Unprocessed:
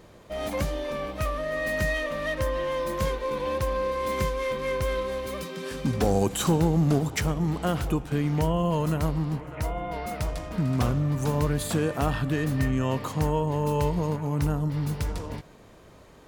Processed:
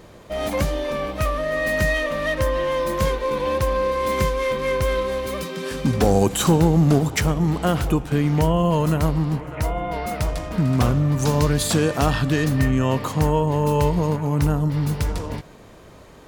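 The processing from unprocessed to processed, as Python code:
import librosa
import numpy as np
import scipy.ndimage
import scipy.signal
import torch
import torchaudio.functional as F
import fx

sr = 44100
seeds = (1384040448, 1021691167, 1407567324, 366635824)

y = fx.peak_eq(x, sr, hz=5200.0, db=7.0, octaves=1.3, at=(11.19, 12.49))
y = y * 10.0 ** (6.0 / 20.0)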